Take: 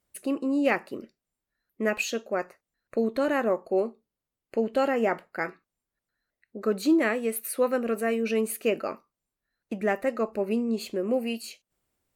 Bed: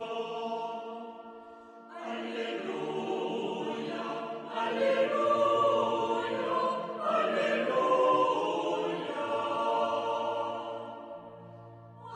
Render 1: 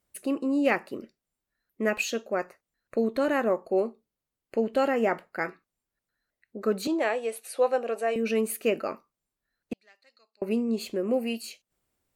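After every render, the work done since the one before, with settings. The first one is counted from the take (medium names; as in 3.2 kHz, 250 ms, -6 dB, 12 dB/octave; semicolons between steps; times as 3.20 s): 6.87–8.16 s: cabinet simulation 470–9600 Hz, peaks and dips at 520 Hz +3 dB, 780 Hz +8 dB, 1.3 kHz -5 dB, 2 kHz -5 dB, 3.4 kHz +3 dB, 8.9 kHz -4 dB; 9.73–10.42 s: band-pass filter 4.3 kHz, Q 11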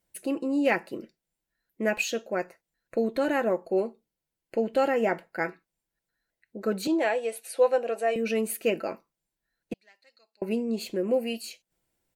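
band-stop 1.2 kHz, Q 5.8; comb 6 ms, depth 35%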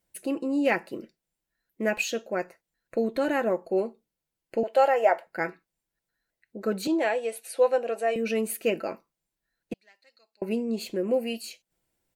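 0.78–1.91 s: short-mantissa float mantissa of 6-bit; 4.63–5.27 s: resonant high-pass 660 Hz, resonance Q 2.6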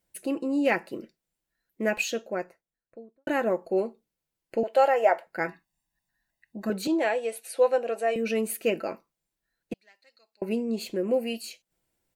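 2.05–3.27 s: studio fade out; 5.48–6.70 s: comb 1.1 ms, depth 82%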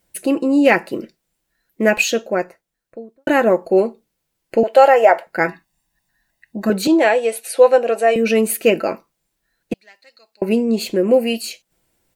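trim +11.5 dB; peak limiter -1 dBFS, peak gain reduction 3 dB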